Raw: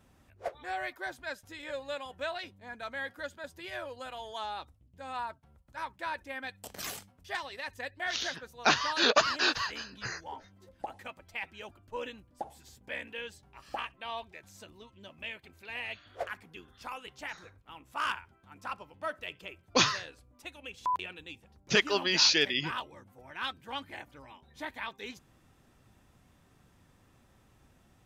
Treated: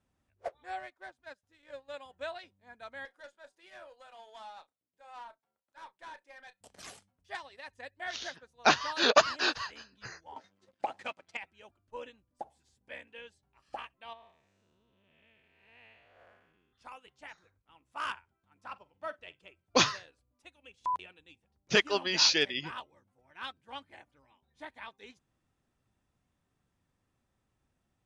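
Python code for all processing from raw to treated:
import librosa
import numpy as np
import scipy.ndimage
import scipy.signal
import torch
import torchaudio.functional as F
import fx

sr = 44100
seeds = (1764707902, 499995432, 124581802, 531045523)

y = fx.chain(x, sr, fx.law_mismatch(coded='A'),
    fx.high_shelf(hz=4600.0, db=-5.0), at=(0.79, 1.94))
y = fx.chain(y, sr, fx.highpass(hz=410.0, slope=12),
    fx.doubler(ms=32.0, db=-11),
    fx.tube_stage(drive_db=35.0, bias=0.3), at=(3.05, 6.61))
y = fx.chain(y, sr, fx.high_shelf(hz=2200.0, db=6.5),
    fx.leveller(passes=2),
    fx.bandpass_edges(low_hz=150.0, high_hz=6300.0), at=(10.36, 11.37))
y = fx.chain(y, sr, fx.spec_blur(span_ms=325.0),
    fx.lowpass(hz=3500.0, slope=6), at=(14.13, 16.73))
y = fx.chain(y, sr, fx.lowpass(hz=7500.0, slope=12),
    fx.doubler(ms=46.0, db=-13), at=(18.64, 19.4))
y = scipy.signal.sosfilt(scipy.signal.butter(12, 11000.0, 'lowpass', fs=sr, output='sos'), y)
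y = fx.dynamic_eq(y, sr, hz=670.0, q=1.2, threshold_db=-49.0, ratio=4.0, max_db=3)
y = fx.upward_expand(y, sr, threshold_db=-52.0, expansion=1.5)
y = y * 10.0 ** (1.5 / 20.0)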